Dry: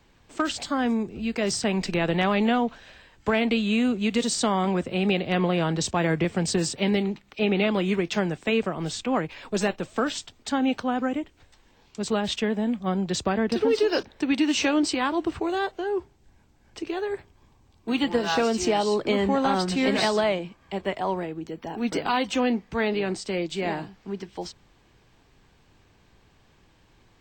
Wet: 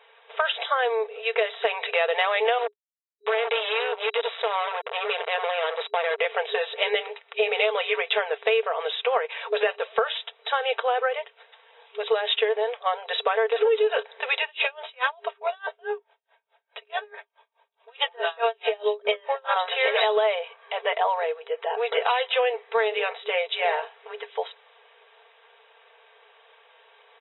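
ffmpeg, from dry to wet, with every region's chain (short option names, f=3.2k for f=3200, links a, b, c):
-filter_complex "[0:a]asettb=1/sr,asplit=3[a][b][c];[a]atrim=end=2.584[d];[b]atrim=start=2.58:end=6.19,asetpts=PTS-STARTPTS,afade=t=in:d=0.004:c=qsin,afade=t=out:st=3.606:d=0.004:c=qsin,acompressor=threshold=-30dB:ratio=2:attack=3.2:release=140:knee=1:detection=peak,tremolo=f=180:d=0.4,acrusher=bits=4:mix=0:aa=0.5[e];[c]atrim=start=6.186[f];[d][e]acrossfade=d=0.004:c1=hsin:c2=qsin[g];[g][f]acrossfade=d=0.004:c1=qsin:c2=hsin,asettb=1/sr,asplit=3[h][i][j];[h]atrim=end=14.424[k];[i]atrim=start=14.42:end=19.56,asetpts=PTS-STARTPTS,afade=t=in:d=0.004:c=qsin,afade=t=out:st=5.136:d=0.004:c=qsin,aecho=1:1:3.2:0.54,atrim=end_sample=226674,aeval=exprs='val(0)*pow(10,-33*(0.5-0.5*cos(2*PI*4.7*n/s))/20)':c=same[l];[j]atrim=start=19.556[m];[k][l]acrossfade=d=0.004:c1=hsin:c2=qsin[n];[n][m]acrossfade=d=0.004:c1=qsin:c2=hsin,afftfilt=real='re*between(b*sr/4096,410,3900)':imag='im*between(b*sr/4096,410,3900)':win_size=4096:overlap=0.75,aecho=1:1:4.4:0.45,acompressor=threshold=-27dB:ratio=5,volume=8dB"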